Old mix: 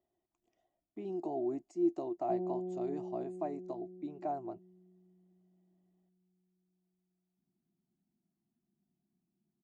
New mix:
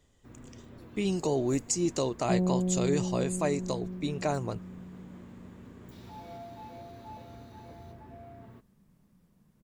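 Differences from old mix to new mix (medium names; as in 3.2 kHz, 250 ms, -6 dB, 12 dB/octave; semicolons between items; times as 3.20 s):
first sound: unmuted; master: remove two resonant band-passes 490 Hz, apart 0.98 oct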